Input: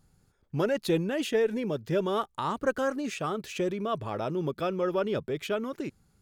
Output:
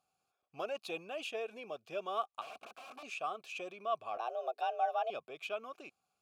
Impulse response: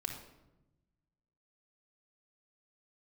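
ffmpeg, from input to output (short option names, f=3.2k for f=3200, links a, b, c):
-filter_complex "[0:a]asettb=1/sr,asplit=3[a][b][c];[a]atrim=end=4.174[d];[b]atrim=start=4.17:end=5.1,asetpts=PTS-STARTPTS,afade=t=in:d=0.004:c=qsin,afade=t=out:st=0.926:d=0.004:c=qsin,afreqshift=240[e];[c]atrim=start=5.096[f];[d][e]acrossfade=d=0.004:c1=hsin:c2=qsin[g];[g][f]acrossfade=d=0.004:c1=qsin:c2=hsin,crystalizer=i=7:c=0,asettb=1/sr,asplit=3[h][i][j];[h]atrim=end=2.414[k];[i]atrim=start=2.41:end=3.03,asetpts=PTS-STARTPTS,afade=t=in:d=0.004:c=qsin,afade=t=out:st=0.616:d=0.004:c=qsin,aeval=exprs='(mod(25.1*val(0)+1,2)-1)/25.1':c=same[l];[j]atrim=start=3.026[m];[k][l]acrossfade=d=0.004:c1=hsin:c2=qsin[n];[n][m]acrossfade=d=0.004:c1=qsin:c2=hsin,asplit=3[o][p][q];[o]bandpass=f=730:t=q:w=8,volume=0dB[r];[p]bandpass=f=1.09k:t=q:w=8,volume=-6dB[s];[q]bandpass=f=2.44k:t=q:w=8,volume=-9dB[t];[r][s][t]amix=inputs=3:normalize=0,volume=-1dB"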